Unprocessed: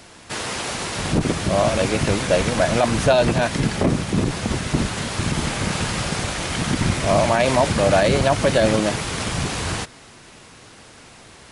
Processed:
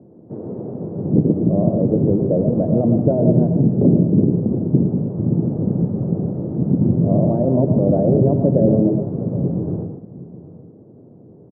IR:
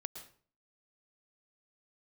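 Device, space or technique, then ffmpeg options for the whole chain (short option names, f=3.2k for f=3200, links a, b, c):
next room: -filter_complex "[0:a]highpass=f=120:w=0.5412,highpass=f=120:w=1.3066,lowpass=f=480:w=0.5412,lowpass=f=480:w=1.3066[a];[1:a]atrim=start_sample=2205[b];[a][b]afir=irnorm=-1:irlink=0,lowshelf=f=340:g=4.5,aecho=1:1:767:0.141,volume=6.5dB"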